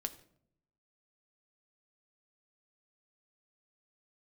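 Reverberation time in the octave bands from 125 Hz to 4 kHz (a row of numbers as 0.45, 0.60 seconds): 1.1, 0.95, 0.75, 0.60, 0.50, 0.40 seconds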